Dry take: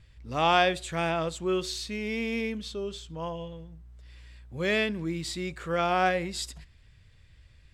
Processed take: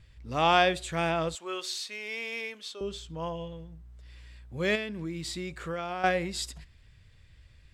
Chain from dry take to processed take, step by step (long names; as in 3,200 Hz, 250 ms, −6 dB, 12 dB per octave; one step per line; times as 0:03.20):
0:01.35–0:02.81: high-pass filter 670 Hz 12 dB per octave
0:04.75–0:06.04: downward compressor 5 to 1, threshold −32 dBFS, peak gain reduction 11 dB